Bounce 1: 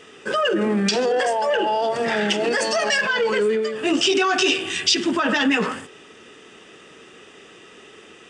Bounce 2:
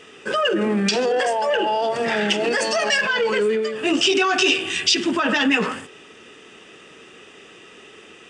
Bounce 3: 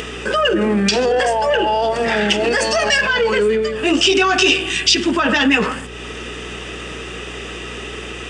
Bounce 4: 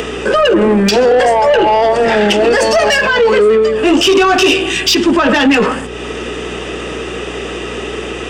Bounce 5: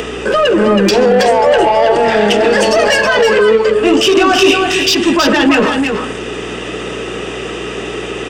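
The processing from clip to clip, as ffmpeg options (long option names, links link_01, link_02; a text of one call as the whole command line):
ffmpeg -i in.wav -af "equalizer=frequency=2600:width_type=o:width=0.42:gain=3" out.wav
ffmpeg -i in.wav -af "acompressor=mode=upward:threshold=-23dB:ratio=2.5,aeval=exprs='val(0)+0.0112*(sin(2*PI*60*n/s)+sin(2*PI*2*60*n/s)/2+sin(2*PI*3*60*n/s)/3+sin(2*PI*4*60*n/s)/4+sin(2*PI*5*60*n/s)/5)':channel_layout=same,volume=4dB" out.wav
ffmpeg -i in.wav -filter_complex "[0:a]acrossover=split=240|970[link_01][link_02][link_03];[link_02]acontrast=87[link_04];[link_01][link_04][link_03]amix=inputs=3:normalize=0,asoftclip=type=tanh:threshold=-8.5dB,volume=4dB" out.wav
ffmpeg -i in.wav -af "aecho=1:1:323:0.562,volume=-1dB" out.wav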